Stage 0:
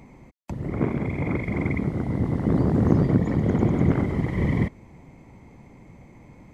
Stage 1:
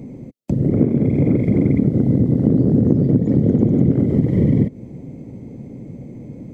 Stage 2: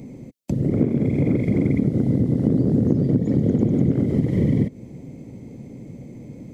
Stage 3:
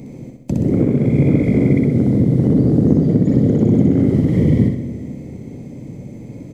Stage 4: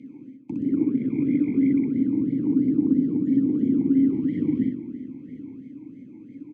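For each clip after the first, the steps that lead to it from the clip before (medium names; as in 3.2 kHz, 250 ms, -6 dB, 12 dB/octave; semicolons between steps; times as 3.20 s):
graphic EQ 125/250/500/1000/2000 Hz +10/+11/+11/-11/-5 dB; compression 6:1, threshold -14 dBFS, peak gain reduction 13.5 dB; trim +2.5 dB
treble shelf 2 kHz +9.5 dB; trim -4 dB
feedback delay 63 ms, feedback 47%, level -3.5 dB; on a send at -13 dB: reverberation RT60 2.8 s, pre-delay 65 ms; on the sum: trim +3.5 dB
delay 909 ms -17.5 dB; talking filter i-u 3 Hz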